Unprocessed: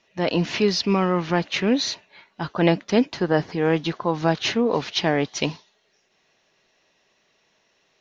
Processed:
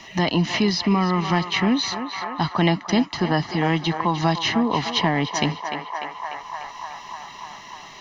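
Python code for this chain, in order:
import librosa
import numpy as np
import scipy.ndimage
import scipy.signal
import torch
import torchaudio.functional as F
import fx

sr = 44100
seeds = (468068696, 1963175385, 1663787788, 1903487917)

y = x + 0.66 * np.pad(x, (int(1.0 * sr / 1000.0), 0))[:len(x)]
y = fx.echo_banded(y, sr, ms=297, feedback_pct=68, hz=1100.0, wet_db=-8)
y = fx.band_squash(y, sr, depth_pct=70)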